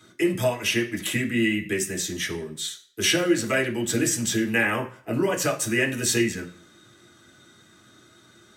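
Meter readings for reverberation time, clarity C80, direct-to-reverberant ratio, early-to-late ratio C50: 0.50 s, 17.0 dB, −0.5 dB, 12.5 dB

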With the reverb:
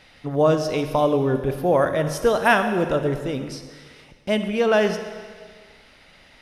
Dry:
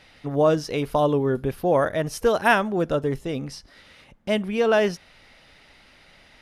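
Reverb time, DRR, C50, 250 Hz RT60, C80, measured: 1.7 s, 8.0 dB, 8.5 dB, 1.6 s, 9.5 dB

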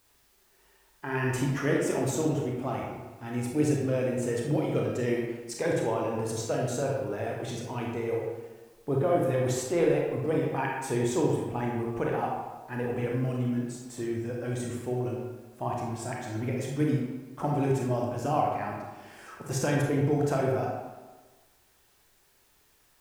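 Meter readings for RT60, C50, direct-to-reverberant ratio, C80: 1.3 s, 0.5 dB, −2.0 dB, 3.0 dB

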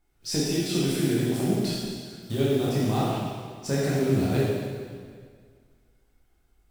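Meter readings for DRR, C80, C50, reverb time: −7.0 dB, 0.0 dB, −2.0 dB, 1.9 s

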